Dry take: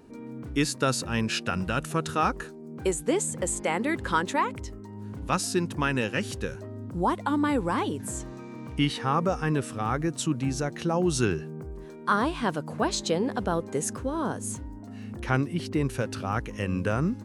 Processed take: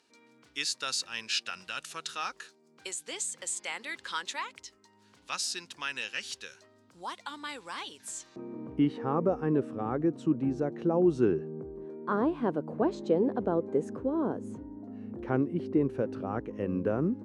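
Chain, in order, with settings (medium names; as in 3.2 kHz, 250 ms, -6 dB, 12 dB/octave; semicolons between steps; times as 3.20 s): band-pass filter 4.4 kHz, Q 1.2, from 8.36 s 370 Hz; trim +2.5 dB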